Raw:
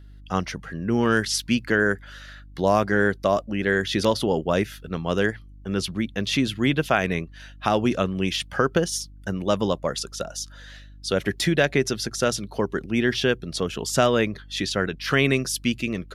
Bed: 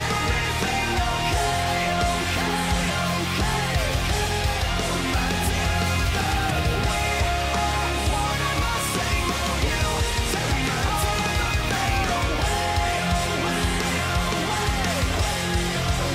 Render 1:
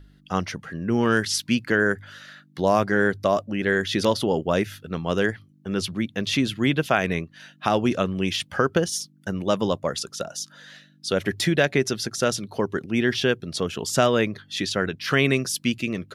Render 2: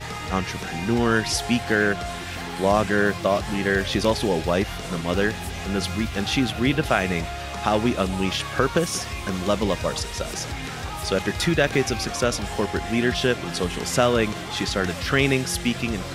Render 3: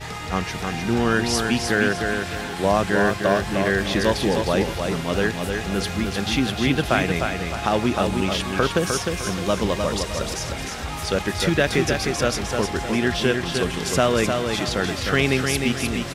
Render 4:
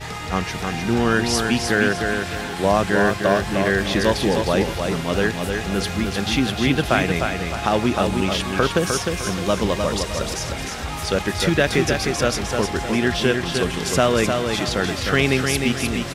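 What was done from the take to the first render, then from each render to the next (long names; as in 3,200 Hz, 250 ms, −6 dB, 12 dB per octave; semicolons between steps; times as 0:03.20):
hum removal 50 Hz, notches 2
mix in bed −8.5 dB
repeating echo 306 ms, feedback 36%, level −5 dB
level +1.5 dB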